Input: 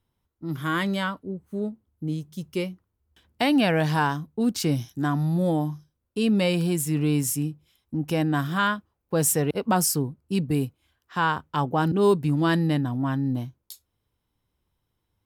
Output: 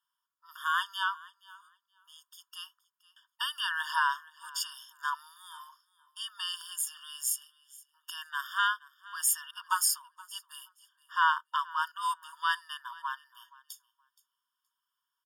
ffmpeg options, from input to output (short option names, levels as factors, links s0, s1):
-filter_complex "[0:a]asettb=1/sr,asplit=3[s0][s1][s2];[s0]atrim=end=6.854[s3];[s1]atrim=start=6.85:end=9.57,asetpts=PTS-STARTPTS,afade=t=in:d=0.004:c=qsin,afade=t=out:st=2.716:d=0.004:c=qsin,highpass=1300[s4];[s2]atrim=start=9.566[s5];[s3][s4]acrossfade=d=0.004:c1=hsin:c2=qsin[s6];[s6][s5]acrossfade=d=0.004:c1=qsin:c2=hsin,aecho=1:1:472|944:0.0841|0.0143,afftfilt=real='re*eq(mod(floor(b*sr/1024/920),2),1)':imag='im*eq(mod(floor(b*sr/1024/920),2),1)':win_size=1024:overlap=0.75"